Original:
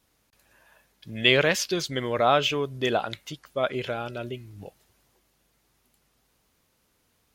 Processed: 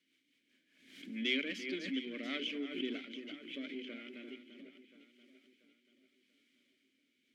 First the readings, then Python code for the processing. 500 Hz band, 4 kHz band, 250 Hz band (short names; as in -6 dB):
-20.0 dB, -12.5 dB, -7.0 dB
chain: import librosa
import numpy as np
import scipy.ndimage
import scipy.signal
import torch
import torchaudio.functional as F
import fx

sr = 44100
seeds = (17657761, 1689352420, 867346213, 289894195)

p1 = np.where(x < 0.0, 10.0 ** (-12.0 / 20.0) * x, x)
p2 = fx.env_lowpass(p1, sr, base_hz=2300.0, full_db=-23.5)
p3 = scipy.signal.sosfilt(scipy.signal.butter(8, 190.0, 'highpass', fs=sr, output='sos'), p2)
p4 = fx.notch(p3, sr, hz=3600.0, q=18.0)
p5 = fx.quant_dither(p4, sr, seeds[0], bits=8, dither='triangular')
p6 = p4 + (p5 * librosa.db_to_amplitude(-11.5))
p7 = fx.rotary_switch(p6, sr, hz=5.0, then_hz=0.85, switch_at_s=2.69)
p8 = fx.vowel_filter(p7, sr, vowel='i')
p9 = fx.hum_notches(p8, sr, base_hz=50, count=6)
p10 = p9 + fx.echo_alternate(p9, sr, ms=343, hz=2500.0, feedback_pct=65, wet_db=-9.5, dry=0)
p11 = fx.pre_swell(p10, sr, db_per_s=72.0)
y = p11 * librosa.db_to_amplitude(3.5)